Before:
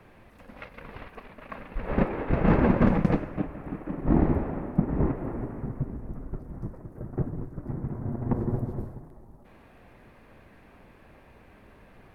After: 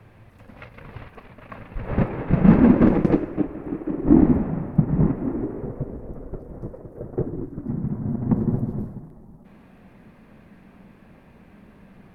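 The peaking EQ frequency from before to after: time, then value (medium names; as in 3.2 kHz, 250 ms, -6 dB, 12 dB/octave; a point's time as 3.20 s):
peaking EQ +12 dB 0.87 oct
2.02 s 110 Hz
2.92 s 350 Hz
4.02 s 350 Hz
4.77 s 120 Hz
5.70 s 490 Hz
7.12 s 490 Hz
7.81 s 190 Hz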